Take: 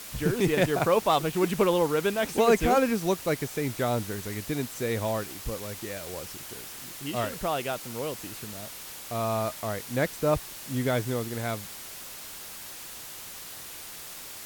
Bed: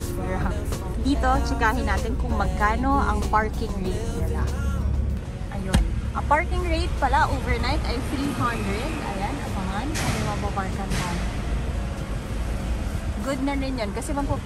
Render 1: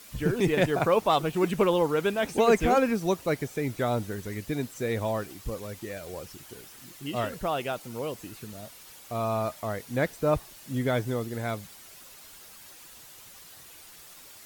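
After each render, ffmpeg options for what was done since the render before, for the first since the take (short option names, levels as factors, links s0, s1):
-af "afftdn=nr=9:nf=-42"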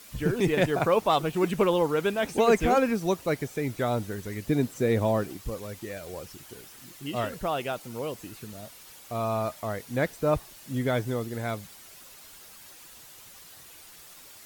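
-filter_complex "[0:a]asettb=1/sr,asplit=3[s0][s1][s2];[s0]atrim=end=4.454[s3];[s1]atrim=start=4.45:end=5.37,asetpts=PTS-STARTPTS,afade=t=in:d=0.004:c=qsin,afade=t=out:st=0.916:d=0.004:c=qsin,equalizer=f=220:w=0.33:g=6.5[s4];[s2]atrim=start=5.366[s5];[s3][s4]acrossfade=d=0.004:c1=hsin:c2=qsin[s6];[s6][s5]acrossfade=d=0.004:c1=qsin:c2=hsin"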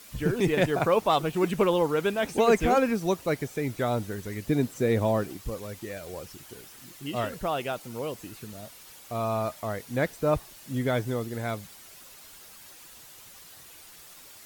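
-af anull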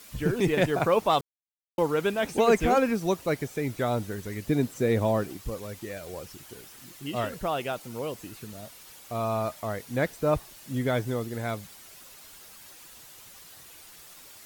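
-filter_complex "[0:a]asplit=3[s0][s1][s2];[s0]atrim=end=1.21,asetpts=PTS-STARTPTS,afade=t=out:st=1.206:d=0.004:c=hsin[s3];[s1]atrim=start=1.21:end=1.78,asetpts=PTS-STARTPTS,volume=0[s4];[s2]atrim=start=1.78,asetpts=PTS-STARTPTS,afade=t=in:d=0.004:c=hsin[s5];[s3][s4][s5]concat=n=3:v=0:a=1"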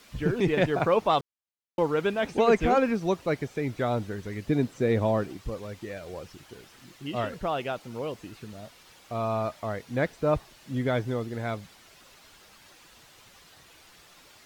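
-filter_complex "[0:a]acrossover=split=6200[s0][s1];[s1]acompressor=threshold=0.002:ratio=4:attack=1:release=60[s2];[s0][s2]amix=inputs=2:normalize=0,highshelf=f=8000:g=-8.5"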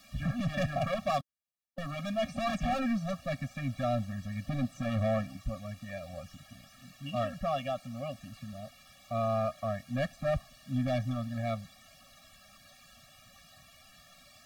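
-af "volume=16.8,asoftclip=hard,volume=0.0596,afftfilt=real='re*eq(mod(floor(b*sr/1024/270),2),0)':imag='im*eq(mod(floor(b*sr/1024/270),2),0)':win_size=1024:overlap=0.75"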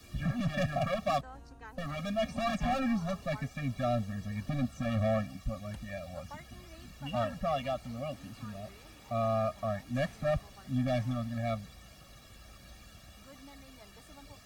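-filter_complex "[1:a]volume=0.0398[s0];[0:a][s0]amix=inputs=2:normalize=0"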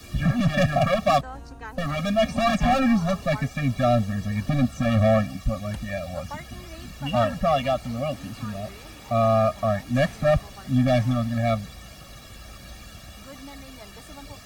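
-af "volume=3.35"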